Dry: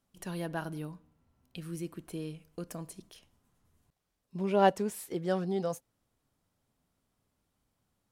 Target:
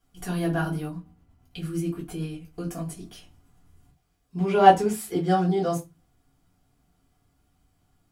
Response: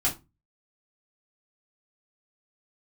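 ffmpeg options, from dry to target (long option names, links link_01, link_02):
-filter_complex "[1:a]atrim=start_sample=2205[link_01];[0:a][link_01]afir=irnorm=-1:irlink=0,asettb=1/sr,asplit=3[link_02][link_03][link_04];[link_02]atrim=end=0.874[link_05];[link_03]atrim=start=0.87:end=2.97,asetpts=PTS-STARTPTS,afade=type=in:duration=0.004:curve=qsin,afade=type=out:start_time=2.096:duration=0.004:curve=qsin,tremolo=f=8.8:d=0.35[link_06];[link_04]atrim=start=2.966[link_07];[link_05][link_06]acrossfade=duration=0.004:curve1=hsin:curve2=qsin[link_08];[link_08][link_07]acrossfade=duration=0.004:curve1=qsin:curve2=hsin,volume=-1dB"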